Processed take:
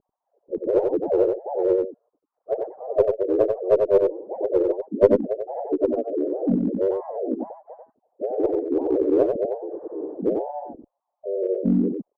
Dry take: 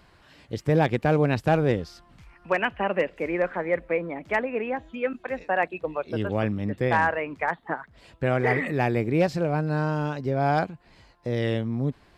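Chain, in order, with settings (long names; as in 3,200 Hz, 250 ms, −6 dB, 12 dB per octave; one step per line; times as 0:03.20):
three sine waves on the formant tracks
inverse Chebyshev low-pass filter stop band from 2,700 Hz, stop band 80 dB
pitch-shifted copies added −4 semitones −1 dB, +3 semitones −4 dB, +5 semitones −18 dB
in parallel at −5 dB: asymmetric clip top −21.5 dBFS
on the sum: single-tap delay 92 ms −4.5 dB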